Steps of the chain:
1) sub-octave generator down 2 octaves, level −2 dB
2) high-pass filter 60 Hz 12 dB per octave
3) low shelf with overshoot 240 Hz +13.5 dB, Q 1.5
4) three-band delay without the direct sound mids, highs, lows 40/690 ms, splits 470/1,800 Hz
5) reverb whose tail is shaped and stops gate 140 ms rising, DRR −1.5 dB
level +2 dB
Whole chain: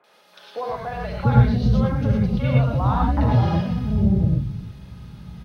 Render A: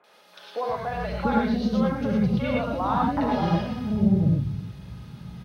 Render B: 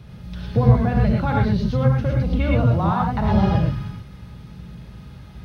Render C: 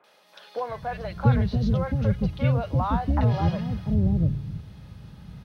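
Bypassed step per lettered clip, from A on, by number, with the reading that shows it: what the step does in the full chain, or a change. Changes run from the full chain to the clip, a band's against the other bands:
1, 125 Hz band −9.0 dB
4, echo-to-direct ratio 5.5 dB to 1.5 dB
5, echo-to-direct ratio 5.5 dB to −1.0 dB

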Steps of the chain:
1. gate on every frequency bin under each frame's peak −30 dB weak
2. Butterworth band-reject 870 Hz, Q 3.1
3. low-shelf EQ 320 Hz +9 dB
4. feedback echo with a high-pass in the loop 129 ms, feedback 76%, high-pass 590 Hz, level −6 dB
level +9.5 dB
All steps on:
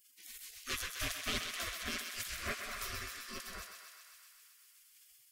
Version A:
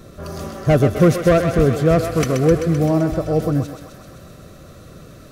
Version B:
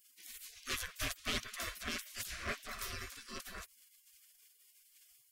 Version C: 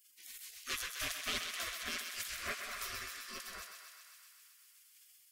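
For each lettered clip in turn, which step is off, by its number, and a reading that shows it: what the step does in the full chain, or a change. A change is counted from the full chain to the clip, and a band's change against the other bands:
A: 1, 4 kHz band −23.5 dB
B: 4, echo-to-direct ratio −4.0 dB to none audible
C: 3, 125 Hz band −7.5 dB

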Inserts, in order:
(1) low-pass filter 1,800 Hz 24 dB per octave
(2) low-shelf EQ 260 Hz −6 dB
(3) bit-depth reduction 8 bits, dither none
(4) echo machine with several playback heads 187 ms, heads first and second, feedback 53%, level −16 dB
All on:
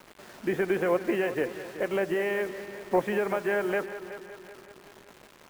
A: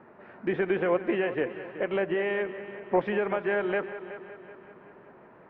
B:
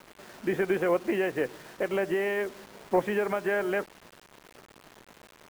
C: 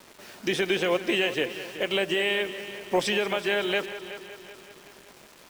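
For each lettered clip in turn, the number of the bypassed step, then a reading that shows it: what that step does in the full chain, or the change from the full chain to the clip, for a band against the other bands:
3, distortion level −23 dB
4, echo-to-direct ratio −10.5 dB to none audible
1, 4 kHz band +17.5 dB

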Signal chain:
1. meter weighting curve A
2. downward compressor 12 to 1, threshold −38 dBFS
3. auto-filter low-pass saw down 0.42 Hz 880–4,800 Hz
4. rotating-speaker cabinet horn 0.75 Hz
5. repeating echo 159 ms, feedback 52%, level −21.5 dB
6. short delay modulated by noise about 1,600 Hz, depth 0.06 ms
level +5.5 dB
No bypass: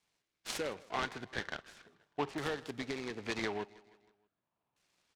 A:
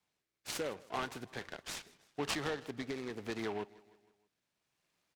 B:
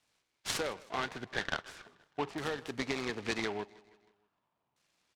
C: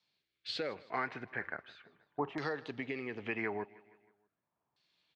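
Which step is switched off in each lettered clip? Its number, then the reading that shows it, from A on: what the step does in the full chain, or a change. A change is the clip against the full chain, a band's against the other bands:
3, change in momentary loudness spread −1 LU
4, 8 kHz band +3.0 dB
6, 4 kHz band −2.0 dB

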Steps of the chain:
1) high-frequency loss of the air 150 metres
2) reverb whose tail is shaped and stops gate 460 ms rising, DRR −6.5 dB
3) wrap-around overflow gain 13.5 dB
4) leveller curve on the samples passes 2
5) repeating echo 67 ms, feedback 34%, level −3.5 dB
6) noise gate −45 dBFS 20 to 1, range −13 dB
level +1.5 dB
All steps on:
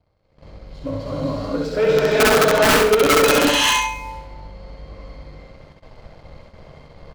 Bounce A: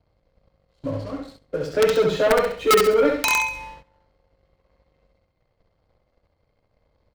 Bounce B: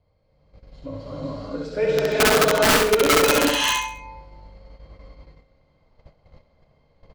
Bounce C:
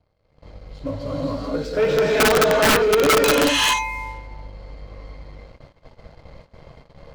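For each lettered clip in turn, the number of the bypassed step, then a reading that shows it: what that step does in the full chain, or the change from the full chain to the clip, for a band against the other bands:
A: 2, change in momentary loudness spread +1 LU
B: 4, change in crest factor +3.0 dB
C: 5, change in integrated loudness −2.0 LU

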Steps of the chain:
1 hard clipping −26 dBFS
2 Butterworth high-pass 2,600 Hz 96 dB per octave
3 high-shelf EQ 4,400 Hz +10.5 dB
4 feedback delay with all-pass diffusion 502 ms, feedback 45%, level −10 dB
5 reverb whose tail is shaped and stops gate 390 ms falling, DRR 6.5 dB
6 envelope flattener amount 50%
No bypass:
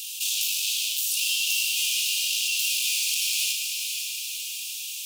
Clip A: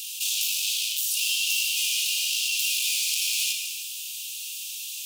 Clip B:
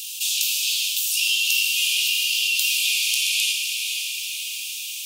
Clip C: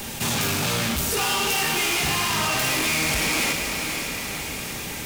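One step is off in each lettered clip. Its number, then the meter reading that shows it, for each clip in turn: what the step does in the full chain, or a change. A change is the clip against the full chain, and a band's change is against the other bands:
4, change in momentary loudness spread +2 LU
1, distortion level −8 dB
2, change in crest factor −2.5 dB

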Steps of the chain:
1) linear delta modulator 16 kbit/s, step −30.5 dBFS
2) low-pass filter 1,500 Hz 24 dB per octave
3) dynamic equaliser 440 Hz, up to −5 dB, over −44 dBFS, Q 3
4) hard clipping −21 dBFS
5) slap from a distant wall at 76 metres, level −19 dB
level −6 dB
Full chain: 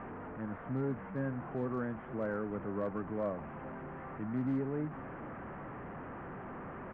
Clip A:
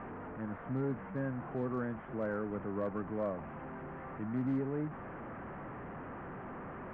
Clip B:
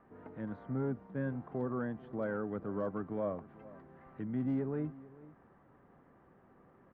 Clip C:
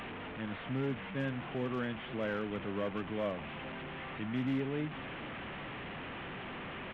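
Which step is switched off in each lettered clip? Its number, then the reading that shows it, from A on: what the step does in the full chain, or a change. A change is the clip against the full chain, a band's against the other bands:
5, echo-to-direct ratio −20.5 dB to none audible
1, 1 kHz band −4.0 dB
2, 2 kHz band +6.5 dB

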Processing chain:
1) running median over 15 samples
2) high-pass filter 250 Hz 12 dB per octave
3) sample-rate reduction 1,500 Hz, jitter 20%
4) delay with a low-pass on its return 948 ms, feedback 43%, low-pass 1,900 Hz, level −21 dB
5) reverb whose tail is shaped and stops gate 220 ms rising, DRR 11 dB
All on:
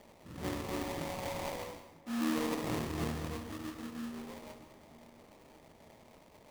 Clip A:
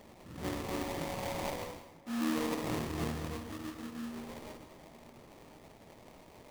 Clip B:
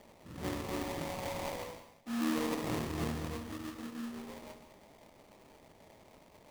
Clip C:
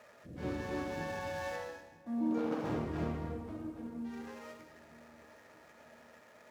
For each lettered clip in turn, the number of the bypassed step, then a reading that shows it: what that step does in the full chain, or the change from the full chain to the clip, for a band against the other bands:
1, change in momentary loudness spread −3 LU
4, change in momentary loudness spread −8 LU
3, 4 kHz band −8.0 dB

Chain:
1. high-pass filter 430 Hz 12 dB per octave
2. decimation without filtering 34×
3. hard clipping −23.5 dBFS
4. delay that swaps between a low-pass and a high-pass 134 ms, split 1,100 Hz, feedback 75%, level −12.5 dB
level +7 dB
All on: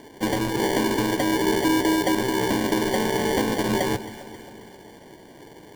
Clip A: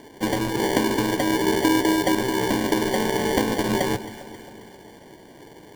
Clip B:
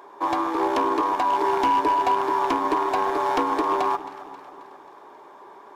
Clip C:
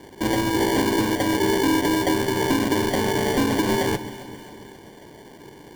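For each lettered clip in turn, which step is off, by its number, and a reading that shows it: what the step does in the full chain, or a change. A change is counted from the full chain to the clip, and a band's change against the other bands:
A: 3, distortion level −17 dB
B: 2, 1 kHz band +14.0 dB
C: 1, change in integrated loudness +1.5 LU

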